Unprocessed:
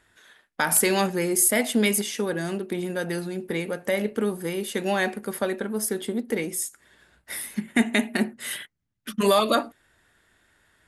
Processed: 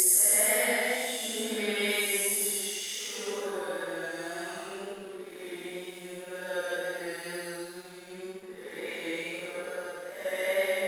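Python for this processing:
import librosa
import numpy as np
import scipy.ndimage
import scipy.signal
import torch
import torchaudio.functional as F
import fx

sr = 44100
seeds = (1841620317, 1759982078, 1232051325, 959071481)

y = scipy.signal.sosfilt(scipy.signal.butter(2, 470.0, 'highpass', fs=sr, output='sos'), x)
y = fx.paulstretch(y, sr, seeds[0], factor=4.2, window_s=0.25, from_s=1.4)
y = fx.wow_flutter(y, sr, seeds[1], rate_hz=2.1, depth_cents=20.0)
y = np.sign(y) * np.maximum(np.abs(y) - 10.0 ** (-49.0 / 20.0), 0.0)
y = y * librosa.db_to_amplitude(-2.5)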